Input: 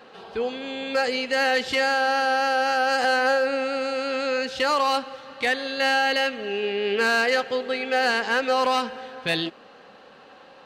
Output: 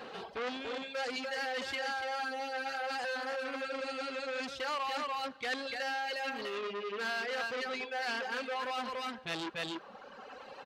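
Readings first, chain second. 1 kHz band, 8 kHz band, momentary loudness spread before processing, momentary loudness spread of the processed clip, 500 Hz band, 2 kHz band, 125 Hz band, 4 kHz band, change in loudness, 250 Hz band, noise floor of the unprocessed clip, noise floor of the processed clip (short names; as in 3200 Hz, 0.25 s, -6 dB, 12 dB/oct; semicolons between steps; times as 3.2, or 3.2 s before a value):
-13.0 dB, -11.5 dB, 8 LU, 4 LU, -14.0 dB, -13.0 dB, n/a, -12.0 dB, -13.0 dB, -12.5 dB, -49 dBFS, -52 dBFS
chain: echo 0.289 s -5.5 dB; reverse; compressor 6:1, threshold -32 dBFS, peak gain reduction 14.5 dB; reverse; reverb removal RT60 1.8 s; core saturation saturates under 2500 Hz; gain +3 dB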